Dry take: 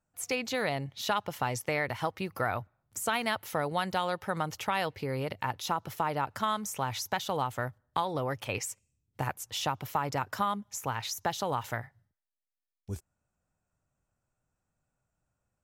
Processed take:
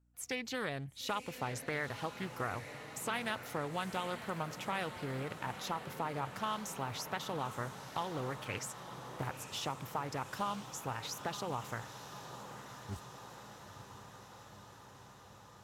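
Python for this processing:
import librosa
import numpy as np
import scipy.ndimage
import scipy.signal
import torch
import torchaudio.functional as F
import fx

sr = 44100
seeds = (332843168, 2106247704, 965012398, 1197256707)

y = fx.peak_eq(x, sr, hz=690.0, db=-4.5, octaves=0.81)
y = fx.echo_diffused(y, sr, ms=948, feedback_pct=72, wet_db=-10.5)
y = fx.add_hum(y, sr, base_hz=60, snr_db=31)
y = fx.doppler_dist(y, sr, depth_ms=0.39)
y = y * 10.0 ** (-6.0 / 20.0)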